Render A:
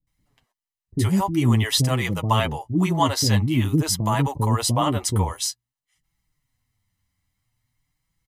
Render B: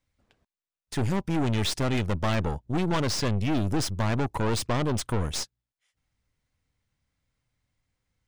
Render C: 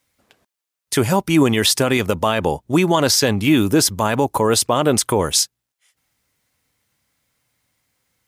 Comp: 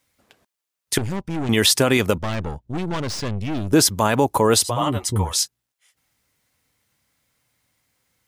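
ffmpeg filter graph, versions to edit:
-filter_complex "[1:a]asplit=2[a][b];[2:a]asplit=4[c][d][e][f];[c]atrim=end=0.982[g];[a]atrim=start=0.978:end=1.492[h];[d]atrim=start=1.488:end=2.182[i];[b]atrim=start=2.178:end=3.732[j];[e]atrim=start=3.728:end=4.82[k];[0:a]atrim=start=4.58:end=5.48[l];[f]atrim=start=5.24[m];[g][h]acrossfade=d=0.004:c1=hsin:c2=hsin[n];[n][i]acrossfade=d=0.004:c1=hsin:c2=hsin[o];[o][j]acrossfade=d=0.004:c1=hsin:c2=hsin[p];[p][k]acrossfade=d=0.004:c1=hsin:c2=hsin[q];[q][l]acrossfade=d=0.24:c1=tri:c2=tri[r];[r][m]acrossfade=d=0.24:c1=tri:c2=tri"

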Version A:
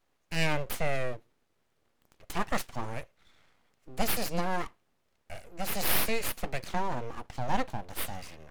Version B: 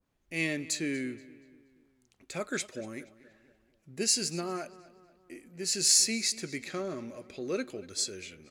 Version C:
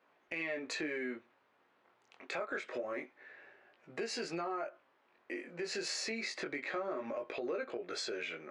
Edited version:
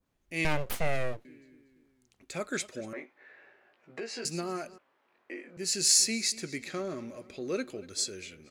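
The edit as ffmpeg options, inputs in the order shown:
-filter_complex "[2:a]asplit=2[a][b];[1:a]asplit=4[c][d][e][f];[c]atrim=end=0.452[g];[0:a]atrim=start=0.448:end=1.252[h];[d]atrim=start=1.248:end=2.932[i];[a]atrim=start=2.928:end=4.252[j];[e]atrim=start=4.248:end=4.782[k];[b]atrim=start=4.778:end=5.572[l];[f]atrim=start=5.568[m];[g][h]acrossfade=d=0.004:c1=hsin:c2=hsin[n];[n][i]acrossfade=d=0.004:c1=hsin:c2=hsin[o];[o][j]acrossfade=d=0.004:c1=hsin:c2=hsin[p];[p][k]acrossfade=d=0.004:c1=hsin:c2=hsin[q];[q][l]acrossfade=d=0.004:c1=hsin:c2=hsin[r];[r][m]acrossfade=d=0.004:c1=hsin:c2=hsin"

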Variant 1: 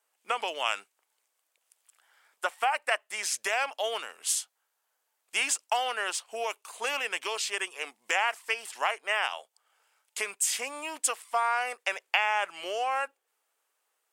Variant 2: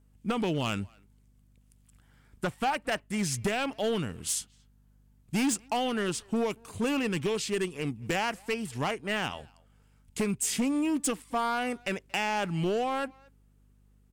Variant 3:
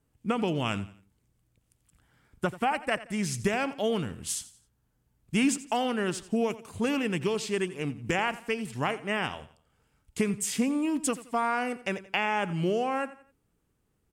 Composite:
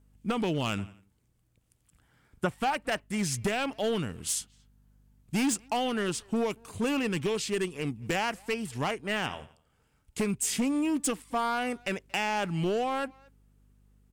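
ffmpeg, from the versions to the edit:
-filter_complex "[2:a]asplit=2[a][b];[1:a]asplit=3[c][d][e];[c]atrim=end=0.782[f];[a]atrim=start=0.778:end=2.512[g];[d]atrim=start=2.508:end=9.262[h];[b]atrim=start=9.258:end=10.182[i];[e]atrim=start=10.178[j];[f][g]acrossfade=d=0.004:c1=hsin:c2=hsin[k];[k][h]acrossfade=d=0.004:c1=hsin:c2=hsin[l];[l][i]acrossfade=d=0.004:c1=hsin:c2=hsin[m];[m][j]acrossfade=d=0.004:c1=hsin:c2=hsin"

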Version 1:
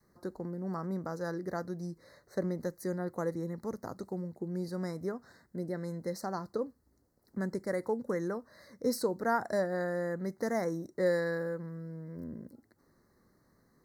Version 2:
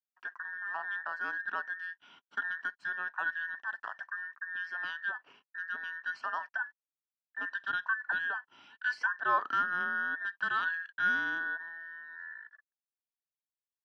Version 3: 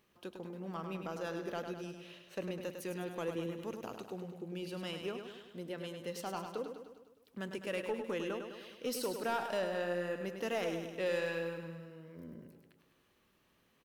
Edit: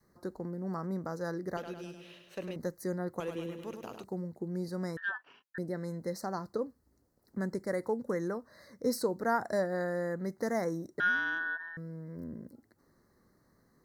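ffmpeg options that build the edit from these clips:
-filter_complex "[2:a]asplit=2[a][b];[1:a]asplit=2[c][d];[0:a]asplit=5[e][f][g][h][i];[e]atrim=end=1.572[j];[a]atrim=start=1.568:end=2.562[k];[f]atrim=start=2.558:end=3.202[l];[b]atrim=start=3.198:end=4.042[m];[g]atrim=start=4.038:end=4.972[n];[c]atrim=start=4.968:end=5.582[o];[h]atrim=start=5.578:end=11.002[p];[d]atrim=start=10.998:end=11.772[q];[i]atrim=start=11.768[r];[j][k]acrossfade=d=0.004:c1=hsin:c2=hsin[s];[s][l]acrossfade=d=0.004:c1=hsin:c2=hsin[t];[t][m]acrossfade=d=0.004:c1=hsin:c2=hsin[u];[u][n]acrossfade=d=0.004:c1=hsin:c2=hsin[v];[v][o]acrossfade=d=0.004:c1=hsin:c2=hsin[w];[w][p]acrossfade=d=0.004:c1=hsin:c2=hsin[x];[x][q]acrossfade=d=0.004:c1=hsin:c2=hsin[y];[y][r]acrossfade=d=0.004:c1=hsin:c2=hsin"

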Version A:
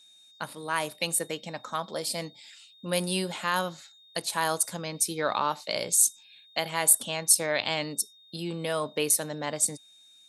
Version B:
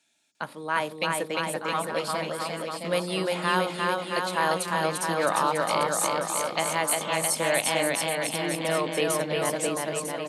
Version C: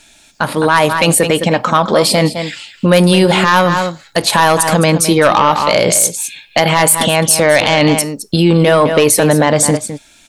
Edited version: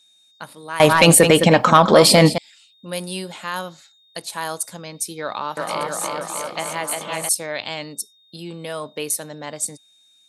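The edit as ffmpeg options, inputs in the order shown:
-filter_complex "[0:a]asplit=3[a][b][c];[a]atrim=end=0.802[d];[2:a]atrim=start=0.798:end=2.382[e];[b]atrim=start=2.378:end=5.572[f];[1:a]atrim=start=5.568:end=7.292[g];[c]atrim=start=7.288[h];[d][e]acrossfade=d=0.004:c1=hsin:c2=hsin[i];[i][f]acrossfade=d=0.004:c1=hsin:c2=hsin[j];[j][g]acrossfade=d=0.004:c1=hsin:c2=hsin[k];[k][h]acrossfade=d=0.004:c1=hsin:c2=hsin"

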